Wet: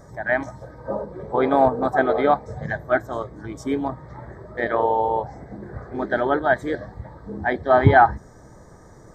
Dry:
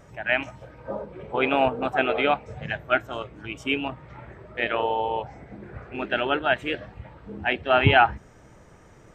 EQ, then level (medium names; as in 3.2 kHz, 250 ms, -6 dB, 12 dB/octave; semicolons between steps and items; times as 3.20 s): Butterworth band-stop 2.7 kHz, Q 1.2; band-stop 1.4 kHz, Q 8; +5.0 dB